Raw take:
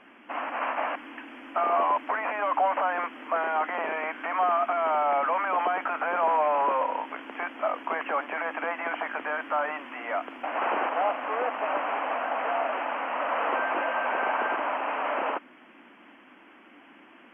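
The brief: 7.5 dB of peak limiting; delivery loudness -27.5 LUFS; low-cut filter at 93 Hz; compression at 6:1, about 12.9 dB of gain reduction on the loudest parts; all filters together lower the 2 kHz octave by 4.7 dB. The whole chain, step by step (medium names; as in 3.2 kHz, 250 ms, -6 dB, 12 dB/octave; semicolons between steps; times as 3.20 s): high-pass 93 Hz; peaking EQ 2 kHz -6.5 dB; compression 6:1, threshold -36 dBFS; trim +13.5 dB; peak limiter -18 dBFS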